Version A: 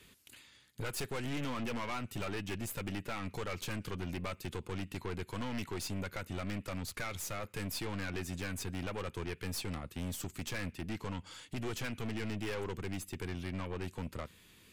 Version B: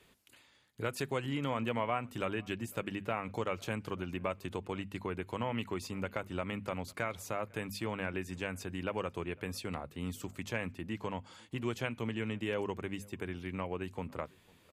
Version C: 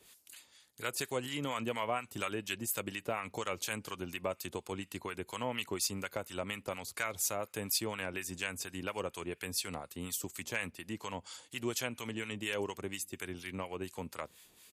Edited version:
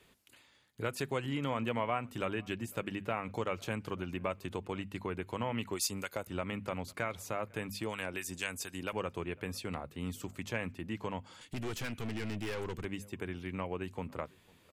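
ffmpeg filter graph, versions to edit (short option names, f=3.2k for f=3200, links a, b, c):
-filter_complex "[2:a]asplit=2[a][b];[1:a]asplit=4[c][d][e][f];[c]atrim=end=5.722[g];[a]atrim=start=5.718:end=6.272[h];[d]atrim=start=6.268:end=7.832[i];[b]atrim=start=7.828:end=8.932[j];[e]atrim=start=8.928:end=11.412[k];[0:a]atrim=start=11.408:end=12.852[l];[f]atrim=start=12.848[m];[g][h]acrossfade=d=0.004:c1=hsin:c2=hsin[n];[n][i]acrossfade=d=0.004:c1=hsin:c2=hsin[o];[o][j]acrossfade=d=0.004:c1=hsin:c2=hsin[p];[p][k]acrossfade=d=0.004:c1=hsin:c2=hsin[q];[q][l]acrossfade=d=0.004:c1=hsin:c2=hsin[r];[r][m]acrossfade=d=0.004:c1=hsin:c2=hsin"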